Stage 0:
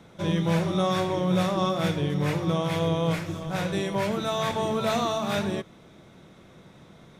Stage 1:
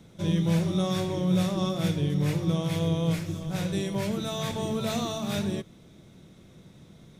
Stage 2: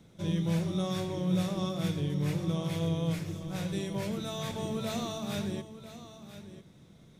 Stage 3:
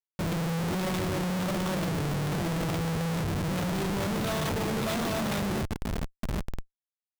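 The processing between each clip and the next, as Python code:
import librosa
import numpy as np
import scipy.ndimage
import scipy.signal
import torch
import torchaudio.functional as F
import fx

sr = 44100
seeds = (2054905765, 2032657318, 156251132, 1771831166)

y1 = fx.peak_eq(x, sr, hz=1100.0, db=-11.5, octaves=2.9)
y1 = y1 * librosa.db_to_amplitude(2.5)
y2 = y1 + 10.0 ** (-13.5 / 20.0) * np.pad(y1, (int(995 * sr / 1000.0), 0))[:len(y1)]
y2 = y2 * librosa.db_to_amplitude(-5.0)
y3 = fx.schmitt(y2, sr, flips_db=-40.5)
y3 = y3 * librosa.db_to_amplitude(4.0)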